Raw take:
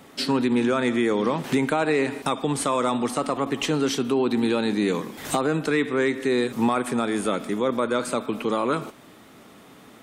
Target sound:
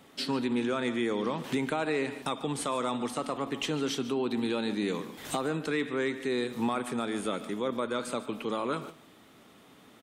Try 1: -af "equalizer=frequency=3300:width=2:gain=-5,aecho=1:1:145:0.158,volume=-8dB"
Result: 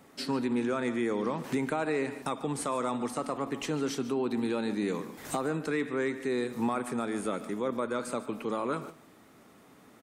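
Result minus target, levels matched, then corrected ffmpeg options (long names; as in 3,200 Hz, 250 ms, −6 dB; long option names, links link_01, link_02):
4,000 Hz band −6.0 dB
-af "equalizer=frequency=3300:width=2:gain=3.5,aecho=1:1:145:0.158,volume=-8dB"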